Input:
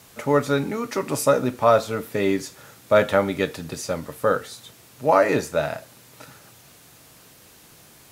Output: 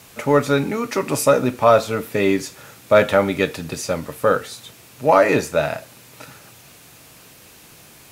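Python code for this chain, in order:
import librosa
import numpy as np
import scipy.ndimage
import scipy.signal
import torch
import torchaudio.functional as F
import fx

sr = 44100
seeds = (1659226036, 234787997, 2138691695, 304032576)

p1 = fx.peak_eq(x, sr, hz=2500.0, db=4.0, octaves=0.35)
p2 = fx.fold_sine(p1, sr, drive_db=3, ceiling_db=-3.0)
p3 = p1 + F.gain(torch.from_numpy(p2), -9.5).numpy()
y = F.gain(torch.from_numpy(p3), -1.0).numpy()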